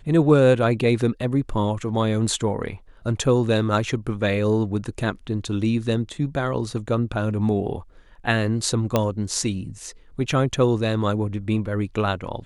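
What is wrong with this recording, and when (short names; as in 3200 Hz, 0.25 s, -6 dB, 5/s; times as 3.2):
8.96 pop -6 dBFS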